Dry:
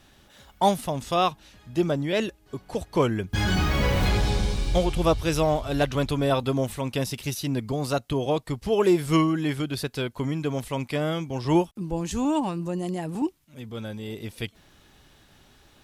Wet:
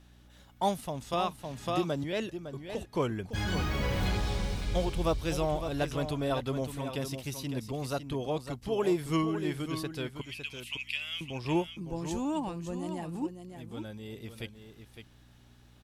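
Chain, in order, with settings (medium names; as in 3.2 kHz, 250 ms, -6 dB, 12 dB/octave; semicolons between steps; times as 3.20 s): 4.78–5.33 s: companding laws mixed up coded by mu; 10.21–11.21 s: resonant high-pass 2.7 kHz, resonance Q 7.9; hum 60 Hz, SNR 24 dB; delay 558 ms -9 dB; 1.13–2.04 s: three bands compressed up and down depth 100%; trim -8 dB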